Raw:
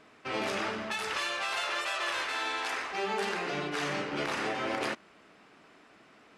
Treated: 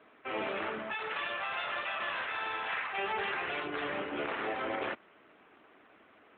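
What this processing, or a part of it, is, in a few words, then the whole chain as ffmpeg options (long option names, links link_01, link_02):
telephone: -filter_complex "[0:a]asplit=3[link_01][link_02][link_03];[link_01]afade=type=out:start_time=2.68:duration=0.02[link_04];[link_02]tiltshelf=frequency=750:gain=-5,afade=type=in:start_time=2.68:duration=0.02,afade=type=out:start_time=3.63:duration=0.02[link_05];[link_03]afade=type=in:start_time=3.63:duration=0.02[link_06];[link_04][link_05][link_06]amix=inputs=3:normalize=0,highpass=250,lowpass=3600,asoftclip=type=tanh:threshold=-22.5dB" -ar 8000 -c:a libopencore_amrnb -b:a 12200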